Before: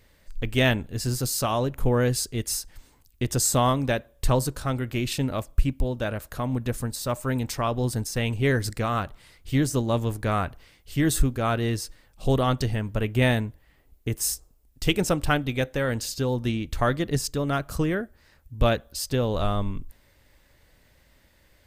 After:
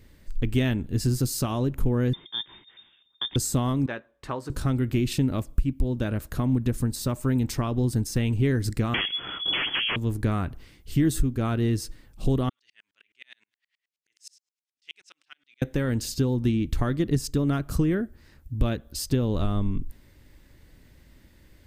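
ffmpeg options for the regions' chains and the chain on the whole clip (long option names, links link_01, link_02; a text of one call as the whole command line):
ffmpeg -i in.wav -filter_complex "[0:a]asettb=1/sr,asplit=3[link_01][link_02][link_03];[link_01]atrim=end=2.134[link_04];[link_02]atrim=start=2.13:end=3.36,asetpts=PTS-STARTPTS,afade=type=in:duration=0.004:curve=qsin,afade=type=out:start_time=1.226:duration=0.004:curve=qsin,highpass=48,lowpass=frequency=3100:width_type=q:width=0.5098,lowpass=frequency=3100:width_type=q:width=0.6013,lowpass=frequency=3100:width_type=q:width=0.9,lowpass=frequency=3100:width_type=q:width=2.563,afreqshift=-3700[link_05];[link_03]atrim=start=3.356[link_06];[link_04][link_05]acrossfade=duration=0.004:curve1=hsin:curve2=qsin[link_07];[link_07][link_06]acrossfade=duration=0.004:curve1=qsin:curve2=hsin,asettb=1/sr,asplit=3[link_08][link_09][link_10];[link_08]atrim=end=3.864[link_11];[link_09]atrim=start=3.86:end=4.5,asetpts=PTS-STARTPTS,afade=type=in:duration=0.004:curve=qsin,afade=type=out:start_time=0.636:duration=0.004:curve=qsin,bandpass=frequency=1200:width_type=q:width=1.1,asplit=2[link_12][link_13];[link_13]adelay=18,volume=-13.5dB[link_14];[link_12][link_14]amix=inputs=2:normalize=0,atrim=end_sample=28224[link_15];[link_10]atrim=start=4.496[link_16];[link_11][link_15]acrossfade=duration=0.004:curve1=hsin:curve2=qsin[link_17];[link_17][link_16]acrossfade=duration=0.004:curve1=qsin:curve2=hsin,asettb=1/sr,asplit=3[link_18][link_19][link_20];[link_18]atrim=end=8.944[link_21];[link_19]atrim=start=8.94:end=9.96,asetpts=PTS-STARTPTS,afade=type=in:duration=0.004:curve=qsin,afade=type=out:start_time=1.016:duration=0.004:curve=qsin,asubboost=boost=4:cutoff=77,aeval=exprs='0.251*sin(PI/2*7.08*val(0)/0.251)':channel_layout=same,lowpass=frequency=2900:width_type=q:width=0.5098,lowpass=frequency=2900:width_type=q:width=0.6013,lowpass=frequency=2900:width_type=q:width=0.9,lowpass=frequency=2900:width_type=q:width=2.563,afreqshift=-3400[link_22];[link_20]atrim=start=9.956[link_23];[link_21][link_22]acrossfade=duration=0.004:curve1=hsin:curve2=qsin[link_24];[link_24][link_23]acrossfade=duration=0.004:curve1=qsin:curve2=hsin,asettb=1/sr,asplit=3[link_25][link_26][link_27];[link_25]atrim=end=12.494[link_28];[link_26]atrim=start=12.49:end=15.62,asetpts=PTS-STARTPTS,afade=type=in:duration=0.004:curve=qsin,afade=type=out:start_time=3.126:duration=0.004:curve=qsin,acompressor=threshold=-31dB:ratio=2.5:attack=3.2:release=140:knee=1:detection=peak,asuperpass=centerf=3600:order=4:qfactor=0.82,aeval=exprs='val(0)*pow(10,-39*if(lt(mod(-9.5*n/s,1),2*abs(-9.5)/1000),1-mod(-9.5*n/s,1)/(2*abs(-9.5)/1000),(mod(-9.5*n/s,1)-2*abs(-9.5)/1000)/(1-2*abs(-9.5)/1000))/20)':channel_layout=same[link_29];[link_27]atrim=start=15.616[link_30];[link_28][link_29]acrossfade=duration=0.004:curve1=hsin:curve2=qsin[link_31];[link_31][link_30]acrossfade=duration=0.004:curve1=qsin:curve2=hsin,acompressor=threshold=-28dB:ratio=3,lowshelf=frequency=430:width_type=q:width=1.5:gain=7" out.wav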